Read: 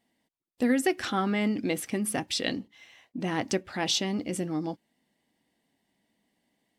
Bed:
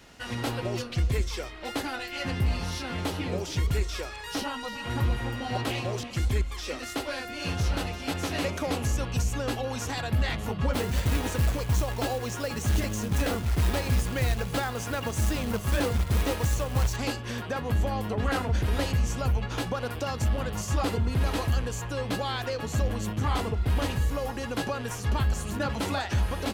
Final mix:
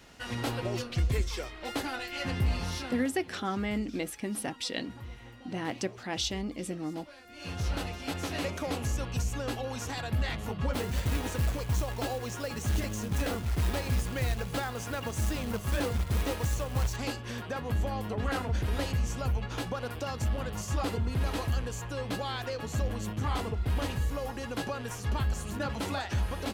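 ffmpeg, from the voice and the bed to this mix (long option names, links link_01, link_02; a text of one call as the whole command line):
ffmpeg -i stem1.wav -i stem2.wav -filter_complex "[0:a]adelay=2300,volume=-5dB[link_01];[1:a]volume=12dB,afade=type=out:start_time=2.79:duration=0.28:silence=0.158489,afade=type=in:start_time=7.23:duration=0.48:silence=0.199526[link_02];[link_01][link_02]amix=inputs=2:normalize=0" out.wav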